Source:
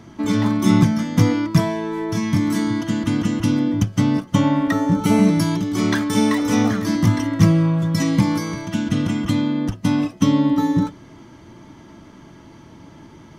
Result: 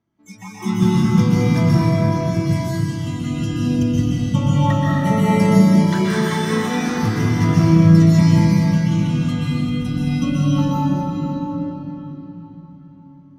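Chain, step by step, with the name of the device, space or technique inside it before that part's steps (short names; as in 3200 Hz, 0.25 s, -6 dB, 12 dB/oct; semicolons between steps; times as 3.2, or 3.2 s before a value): spectral noise reduction 27 dB; swimming-pool hall (reverb RT60 4.5 s, pre-delay 0.119 s, DRR -8.5 dB; high shelf 5300 Hz -5 dB); gain -5 dB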